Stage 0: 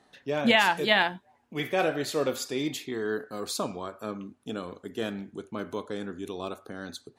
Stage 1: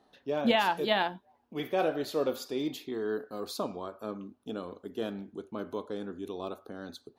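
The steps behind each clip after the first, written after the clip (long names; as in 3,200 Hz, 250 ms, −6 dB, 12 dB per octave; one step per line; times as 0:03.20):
octave-band graphic EQ 125/2,000/8,000 Hz −7/−9/−12 dB
level −1 dB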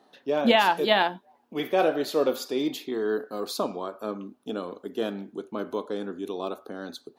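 high-pass filter 190 Hz 12 dB per octave
level +6 dB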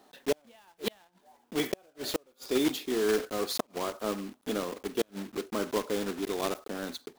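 one scale factor per block 3 bits
gate with flip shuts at −15 dBFS, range −38 dB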